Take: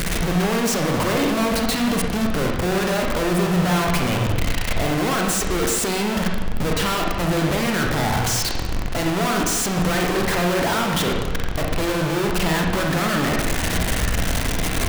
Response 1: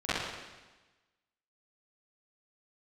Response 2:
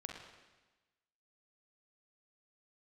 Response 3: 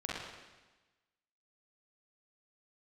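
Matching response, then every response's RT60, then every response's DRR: 2; 1.2, 1.2, 1.2 seconds; −16.5, 0.5, −6.5 decibels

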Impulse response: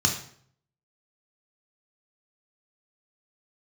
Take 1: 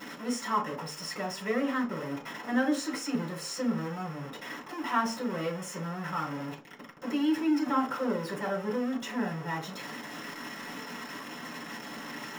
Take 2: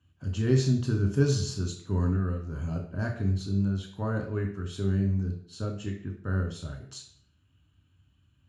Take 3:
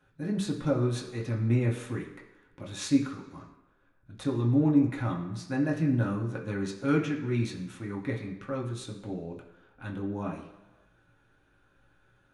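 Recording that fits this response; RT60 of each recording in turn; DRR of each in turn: 2; 0.45 s, 0.60 s, non-exponential decay; −4.5, 1.0, −3.0 decibels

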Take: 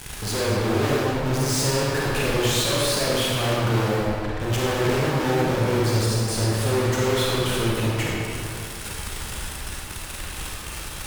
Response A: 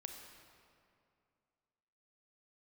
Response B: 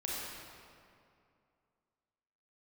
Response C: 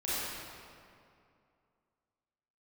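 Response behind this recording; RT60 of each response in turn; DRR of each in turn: B; 2.4, 2.5, 2.5 seconds; 3.5, −5.5, −11.0 decibels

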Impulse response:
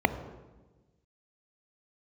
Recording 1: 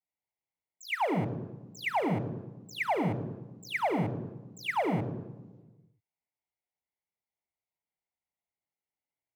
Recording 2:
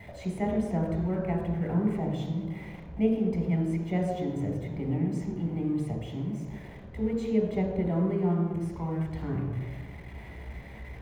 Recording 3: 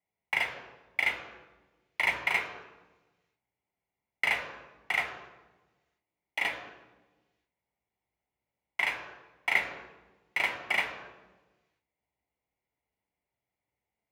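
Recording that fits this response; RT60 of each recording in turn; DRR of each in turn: 1; 1.2, 1.2, 1.2 seconds; 10.5, −1.0, 4.5 decibels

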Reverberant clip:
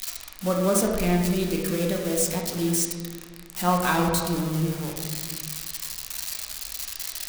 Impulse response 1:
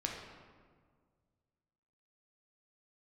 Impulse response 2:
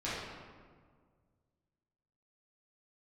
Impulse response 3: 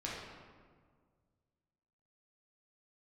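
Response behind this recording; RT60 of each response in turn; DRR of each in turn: 1; 1.8, 1.8, 1.8 seconds; −0.5, −11.0, −6.0 decibels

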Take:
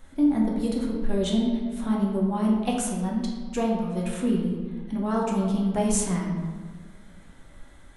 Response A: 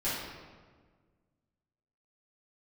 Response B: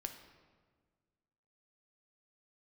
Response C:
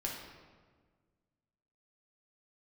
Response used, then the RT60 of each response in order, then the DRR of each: C; 1.5, 1.6, 1.5 seconds; −12.0, 5.5, −2.5 decibels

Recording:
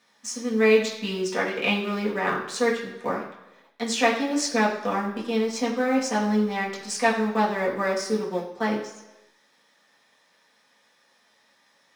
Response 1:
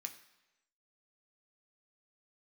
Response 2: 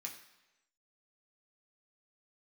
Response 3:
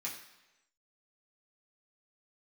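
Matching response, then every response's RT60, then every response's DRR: 3; 1.0, 1.0, 1.0 seconds; 3.5, −1.5, −6.5 decibels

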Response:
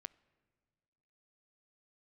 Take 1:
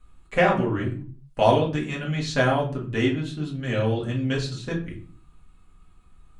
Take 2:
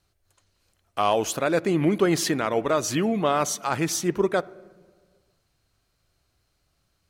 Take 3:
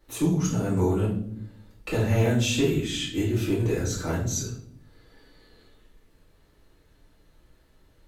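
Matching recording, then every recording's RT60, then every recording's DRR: 2; 0.45, 1.7, 0.65 seconds; −4.0, 20.0, −8.5 decibels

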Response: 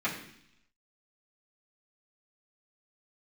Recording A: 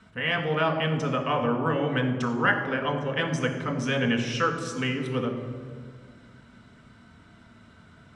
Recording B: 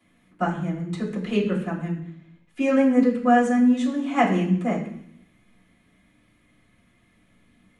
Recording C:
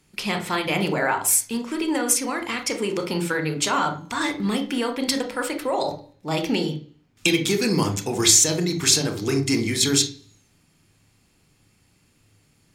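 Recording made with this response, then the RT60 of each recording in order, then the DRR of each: B; 1.9, 0.70, 0.45 seconds; 1.5, −10.5, 6.0 decibels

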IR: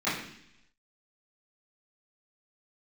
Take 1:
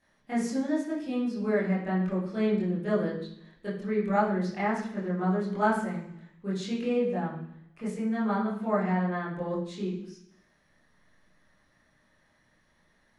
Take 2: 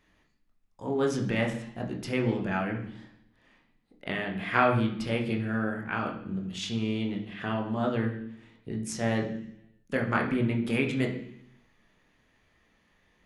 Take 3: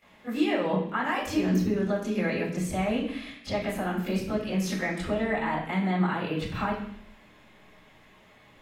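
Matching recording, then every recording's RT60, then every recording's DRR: 3; 0.70, 0.70, 0.70 seconds; −8.0, 1.0, −14.5 decibels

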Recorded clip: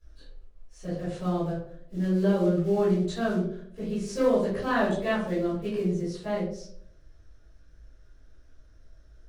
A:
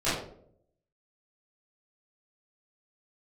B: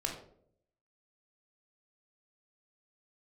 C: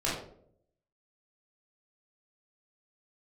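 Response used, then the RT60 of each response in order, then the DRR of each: A; 0.65, 0.65, 0.65 seconds; −15.0, 0.5, −7.5 decibels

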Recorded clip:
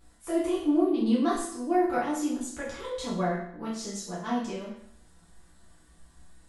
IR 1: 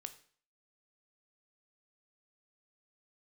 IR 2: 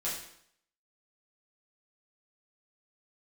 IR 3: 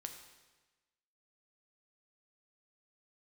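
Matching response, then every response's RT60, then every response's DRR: 2; 0.50, 0.65, 1.2 seconds; 9.0, −8.0, 4.5 decibels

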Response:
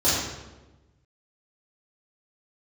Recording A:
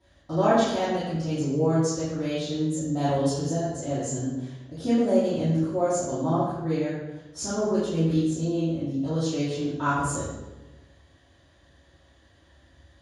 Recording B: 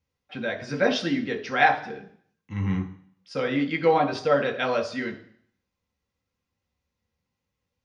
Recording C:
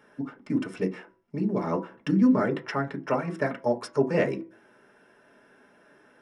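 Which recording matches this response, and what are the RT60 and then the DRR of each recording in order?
A; 1.1, 0.60, 0.45 seconds; −13.0, 2.5, 0.5 decibels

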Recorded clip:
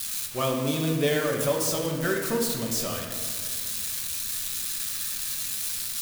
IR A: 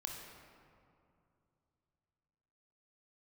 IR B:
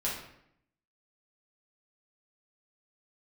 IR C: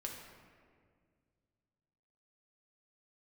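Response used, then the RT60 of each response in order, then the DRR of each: C; 2.6, 0.75, 2.0 seconds; 1.0, −6.0, −0.5 decibels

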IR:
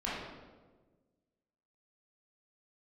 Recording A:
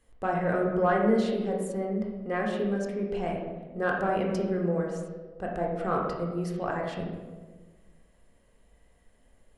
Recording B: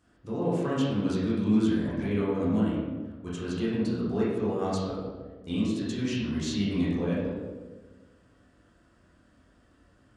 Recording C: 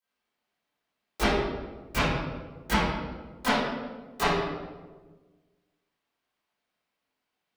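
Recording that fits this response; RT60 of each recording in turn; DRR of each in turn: B; 1.4, 1.4, 1.4 seconds; −1.0, −8.5, −17.5 decibels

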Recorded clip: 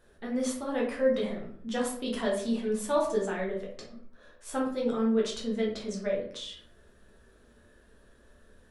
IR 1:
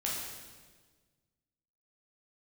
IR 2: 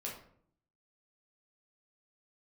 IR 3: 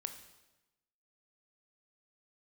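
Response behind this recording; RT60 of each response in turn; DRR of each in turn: 2; 1.5, 0.60, 1.0 seconds; −5.0, −4.0, 7.0 decibels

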